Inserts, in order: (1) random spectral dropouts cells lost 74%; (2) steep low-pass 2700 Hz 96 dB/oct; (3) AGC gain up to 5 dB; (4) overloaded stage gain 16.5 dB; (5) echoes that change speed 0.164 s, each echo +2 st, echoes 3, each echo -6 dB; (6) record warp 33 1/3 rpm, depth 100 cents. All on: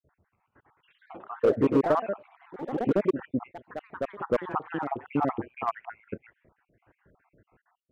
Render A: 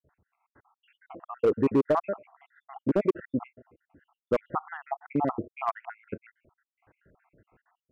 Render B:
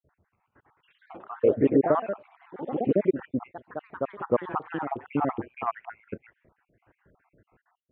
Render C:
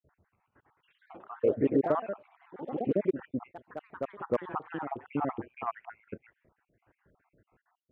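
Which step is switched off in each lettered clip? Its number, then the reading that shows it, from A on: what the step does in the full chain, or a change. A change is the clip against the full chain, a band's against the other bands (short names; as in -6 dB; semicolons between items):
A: 5, crest factor change -4.0 dB; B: 4, distortion -14 dB; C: 3, 2 kHz band -2.0 dB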